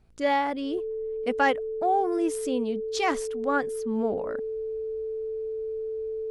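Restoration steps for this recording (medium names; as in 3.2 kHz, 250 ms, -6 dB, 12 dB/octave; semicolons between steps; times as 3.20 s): de-hum 55.6 Hz, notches 9; band-stop 440 Hz, Q 30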